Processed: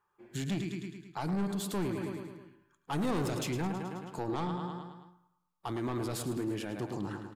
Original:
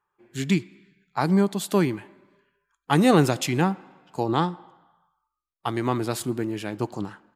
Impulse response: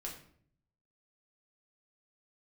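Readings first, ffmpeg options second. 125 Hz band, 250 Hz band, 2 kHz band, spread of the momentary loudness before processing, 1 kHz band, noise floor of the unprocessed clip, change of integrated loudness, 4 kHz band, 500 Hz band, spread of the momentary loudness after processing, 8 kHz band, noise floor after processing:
−9.5 dB, −10.0 dB, −12.0 dB, 15 LU, −11.5 dB, −84 dBFS, −11.5 dB, −10.0 dB, −11.0 dB, 11 LU, −8.5 dB, −77 dBFS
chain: -filter_complex "[0:a]aecho=1:1:107|214|321|428|535|642:0.282|0.149|0.0792|0.042|0.0222|0.0118,asoftclip=type=tanh:threshold=-20.5dB,alimiter=level_in=5.5dB:limit=-24dB:level=0:latency=1:release=78,volume=-5.5dB,asplit=2[link_01][link_02];[1:a]atrim=start_sample=2205,lowpass=frequency=2600:width=0.5412,lowpass=frequency=2600:width=1.3066[link_03];[link_02][link_03]afir=irnorm=-1:irlink=0,volume=-11dB[link_04];[link_01][link_04]amix=inputs=2:normalize=0"

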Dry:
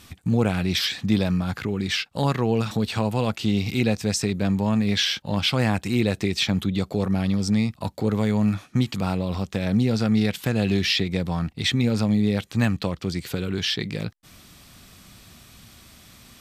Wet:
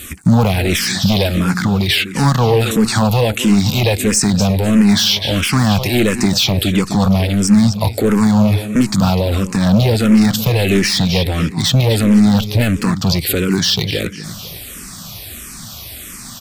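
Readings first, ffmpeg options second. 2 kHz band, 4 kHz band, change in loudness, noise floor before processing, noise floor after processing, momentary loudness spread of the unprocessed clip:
+8.5 dB, +9.0 dB, +9.5 dB, −53 dBFS, −32 dBFS, 6 LU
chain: -filter_complex "[0:a]aecho=1:1:250|500|750|1000:0.168|0.0739|0.0325|0.0143,asoftclip=type=hard:threshold=-19dB,highshelf=frequency=7000:gain=11,alimiter=level_in=19dB:limit=-1dB:release=50:level=0:latency=1,asplit=2[link_01][link_02];[link_02]afreqshift=-1.5[link_03];[link_01][link_03]amix=inputs=2:normalize=1,volume=-2.5dB"

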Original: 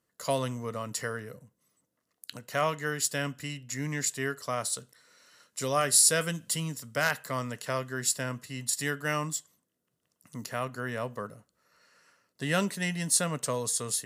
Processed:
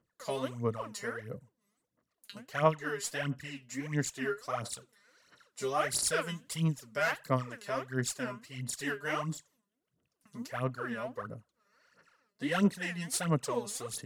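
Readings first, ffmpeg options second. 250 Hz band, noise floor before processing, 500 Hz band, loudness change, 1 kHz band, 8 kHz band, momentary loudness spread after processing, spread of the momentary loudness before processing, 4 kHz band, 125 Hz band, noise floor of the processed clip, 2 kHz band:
0.0 dB, −80 dBFS, −2.0 dB, −4.5 dB, −2.0 dB, −10.5 dB, 14 LU, 12 LU, −6.5 dB, −1.0 dB, −84 dBFS, −3.5 dB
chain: -af "aphaser=in_gain=1:out_gain=1:delay=5:decay=0.78:speed=1.5:type=sinusoidal,aemphasis=mode=reproduction:type=cd,volume=-7dB"

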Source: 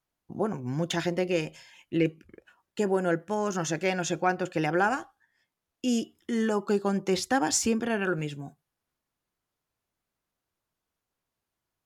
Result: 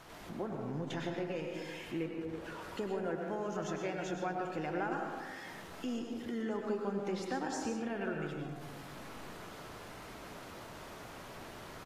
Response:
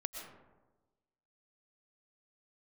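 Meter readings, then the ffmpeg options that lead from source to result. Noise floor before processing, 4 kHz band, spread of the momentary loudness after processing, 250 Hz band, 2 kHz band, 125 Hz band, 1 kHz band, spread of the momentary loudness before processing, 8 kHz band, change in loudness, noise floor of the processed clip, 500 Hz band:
below −85 dBFS, −11.0 dB, 11 LU, −9.0 dB, −10.0 dB, −9.0 dB, −9.0 dB, 8 LU, −17.0 dB, −11.5 dB, −49 dBFS, −9.0 dB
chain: -filter_complex "[0:a]aeval=exprs='val(0)+0.5*0.0106*sgn(val(0))':channel_layout=same,asplit=2[link_01][link_02];[link_02]adelay=99.13,volume=-11dB,highshelf=frequency=4000:gain=-2.23[link_03];[link_01][link_03]amix=inputs=2:normalize=0,acrusher=bits=8:mix=0:aa=0.000001,acompressor=threshold=-41dB:ratio=2,lowpass=frequency=2100:poles=1,lowshelf=frequency=110:gain=-8.5[link_04];[1:a]atrim=start_sample=2205[link_05];[link_04][link_05]afir=irnorm=-1:irlink=0,volume=1dB" -ar 32000 -c:a aac -b:a 48k

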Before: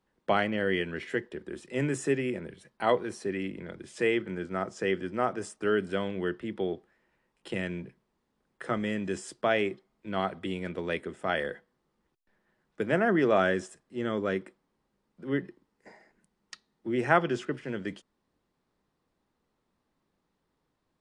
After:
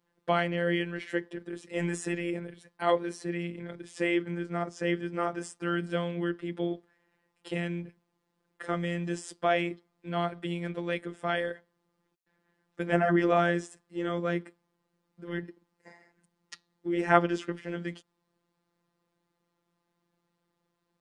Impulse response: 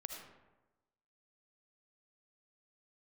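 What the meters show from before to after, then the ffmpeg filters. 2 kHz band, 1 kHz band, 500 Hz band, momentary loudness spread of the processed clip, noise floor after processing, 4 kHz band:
−1.0 dB, +0.5 dB, −1.5 dB, 16 LU, −80 dBFS, −0.5 dB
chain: -af "highpass=60,afftfilt=real='hypot(re,im)*cos(PI*b)':imag='0':win_size=1024:overlap=0.75,volume=3dB"

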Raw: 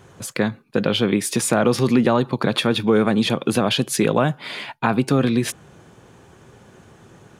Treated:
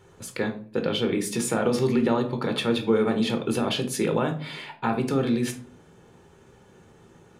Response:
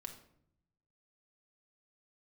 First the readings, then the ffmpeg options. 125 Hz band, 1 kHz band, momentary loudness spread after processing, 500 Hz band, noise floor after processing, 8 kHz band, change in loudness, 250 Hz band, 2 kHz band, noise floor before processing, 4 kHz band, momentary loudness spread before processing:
−7.0 dB, −6.5 dB, 8 LU, −4.5 dB, −54 dBFS, −7.0 dB, −5.5 dB, −5.5 dB, −7.0 dB, −50 dBFS, −6.5 dB, 7 LU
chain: -filter_complex "[1:a]atrim=start_sample=2205,asetrate=79380,aresample=44100[link_01];[0:a][link_01]afir=irnorm=-1:irlink=0,volume=2.5dB"

